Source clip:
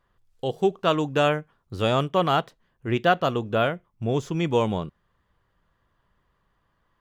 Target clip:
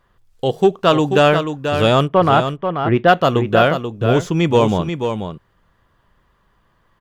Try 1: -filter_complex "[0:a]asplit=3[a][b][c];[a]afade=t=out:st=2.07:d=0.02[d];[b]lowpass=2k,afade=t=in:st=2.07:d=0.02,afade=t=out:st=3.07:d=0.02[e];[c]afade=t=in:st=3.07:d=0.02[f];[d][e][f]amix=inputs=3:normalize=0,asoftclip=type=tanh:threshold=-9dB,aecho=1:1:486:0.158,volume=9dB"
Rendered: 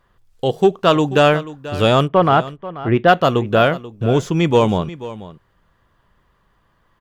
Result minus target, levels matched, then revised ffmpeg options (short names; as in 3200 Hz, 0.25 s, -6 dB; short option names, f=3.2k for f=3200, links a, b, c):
echo-to-direct -8.5 dB
-filter_complex "[0:a]asplit=3[a][b][c];[a]afade=t=out:st=2.07:d=0.02[d];[b]lowpass=2k,afade=t=in:st=2.07:d=0.02,afade=t=out:st=3.07:d=0.02[e];[c]afade=t=in:st=3.07:d=0.02[f];[d][e][f]amix=inputs=3:normalize=0,asoftclip=type=tanh:threshold=-9dB,aecho=1:1:486:0.422,volume=9dB"